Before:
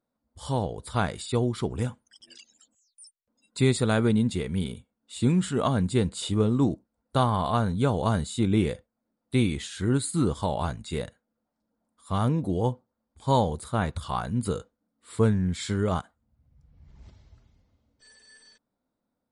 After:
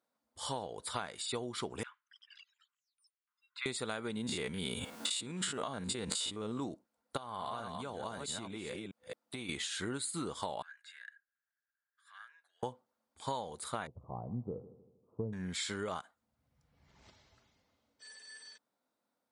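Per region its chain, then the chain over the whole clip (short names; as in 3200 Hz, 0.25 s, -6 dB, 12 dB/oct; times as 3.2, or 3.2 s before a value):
1.83–3.66 steep high-pass 1100 Hz 48 dB/oct + air absorption 400 m
4.17–6.6 stepped spectrum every 50 ms + fast leveller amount 100%
7.17–9.49 reverse delay 0.218 s, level -7.5 dB + compressor 16:1, threshold -31 dBFS
10.62–12.63 high shelf 5800 Hz -11 dB + compressor 2.5:1, threshold -36 dBFS + ladder high-pass 1600 Hz, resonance 90%
13.87–15.33 Gaussian blur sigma 15 samples + bell 120 Hz +8 dB 0.33 oct + multi-head echo 79 ms, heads first and second, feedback 49%, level -21.5 dB
whole clip: HPF 870 Hz 6 dB/oct; high shelf 9500 Hz -4 dB; compressor 10:1, threshold -38 dBFS; gain +3.5 dB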